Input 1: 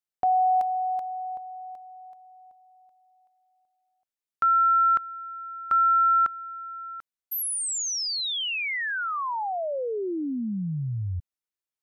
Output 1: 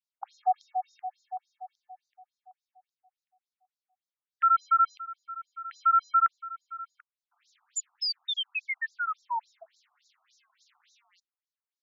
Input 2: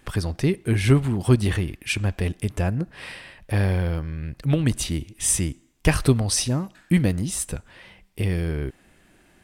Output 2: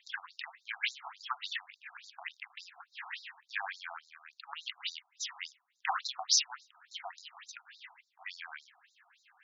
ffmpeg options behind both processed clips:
-af "bandreject=f=196.5:t=h:w=4,bandreject=f=393:t=h:w=4,bandreject=f=589.5:t=h:w=4,acrusher=bits=8:mode=log:mix=0:aa=0.000001,afftfilt=real='re*between(b*sr/1024,930*pow(5300/930,0.5+0.5*sin(2*PI*3.5*pts/sr))/1.41,930*pow(5300/930,0.5+0.5*sin(2*PI*3.5*pts/sr))*1.41)':imag='im*between(b*sr/1024,930*pow(5300/930,0.5+0.5*sin(2*PI*3.5*pts/sr))/1.41,930*pow(5300/930,0.5+0.5*sin(2*PI*3.5*pts/sr))*1.41)':win_size=1024:overlap=0.75,volume=1dB"

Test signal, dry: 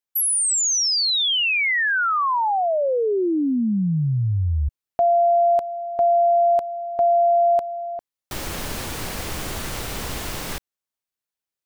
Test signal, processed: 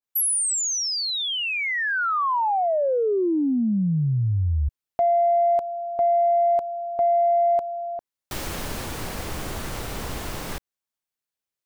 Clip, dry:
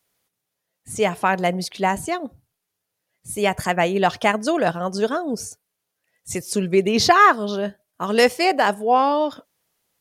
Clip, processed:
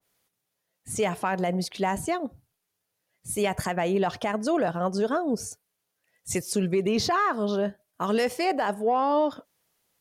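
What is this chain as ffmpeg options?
-filter_complex "[0:a]asplit=2[a][b];[b]asoftclip=type=tanh:threshold=-13.5dB,volume=-7dB[c];[a][c]amix=inputs=2:normalize=0,alimiter=limit=-12dB:level=0:latency=1:release=66,adynamicequalizer=threshold=0.0178:dfrequency=1700:dqfactor=0.7:tfrequency=1700:tqfactor=0.7:attack=5:release=100:ratio=0.375:range=3:mode=cutabove:tftype=highshelf,volume=-4dB"

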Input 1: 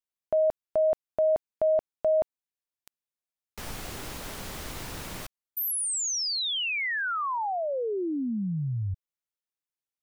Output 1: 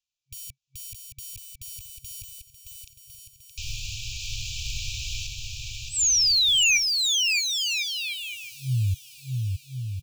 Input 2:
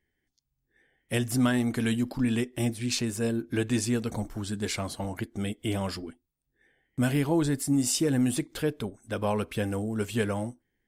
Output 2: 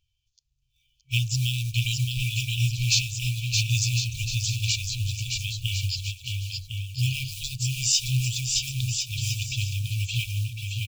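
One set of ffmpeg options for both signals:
-filter_complex "[0:a]aresample=16000,aresample=44100,equalizer=f=4.3k:w=0.31:g=2.5,acrossover=split=4600[a][b];[a]acrusher=bits=5:mode=log:mix=0:aa=0.000001[c];[c][b]amix=inputs=2:normalize=0,aecho=1:1:620|1054|1358|1570|1719:0.631|0.398|0.251|0.158|0.1,afftfilt=real='re*(1-between(b*sr/4096,130,2300))':imag='im*(1-between(b*sr/4096,130,2300))':win_size=4096:overlap=0.75,volume=6.5dB"

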